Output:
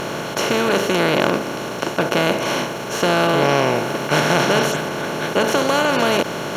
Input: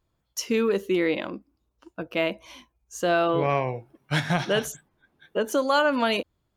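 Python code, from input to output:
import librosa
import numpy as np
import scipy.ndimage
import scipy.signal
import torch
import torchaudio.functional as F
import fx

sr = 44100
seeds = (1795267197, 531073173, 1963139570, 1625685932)

y = fx.bin_compress(x, sr, power=0.2)
y = y * 10.0 ** (-1.5 / 20.0)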